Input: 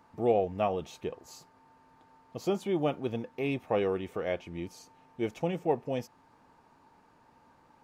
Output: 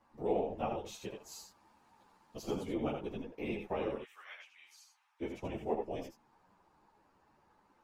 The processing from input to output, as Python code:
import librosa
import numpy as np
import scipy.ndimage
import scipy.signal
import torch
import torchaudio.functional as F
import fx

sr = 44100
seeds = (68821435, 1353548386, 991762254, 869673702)

p1 = fx.high_shelf(x, sr, hz=2400.0, db=10.0, at=(0.84, 2.41), fade=0.02)
p2 = fx.highpass(p1, sr, hz=1200.0, slope=24, at=(3.94, 5.2), fade=0.02)
p3 = fx.whisperise(p2, sr, seeds[0])
p4 = p3 + fx.echo_single(p3, sr, ms=80, db=-6.0, dry=0)
p5 = fx.ensemble(p4, sr)
y = p5 * 10.0 ** (-5.0 / 20.0)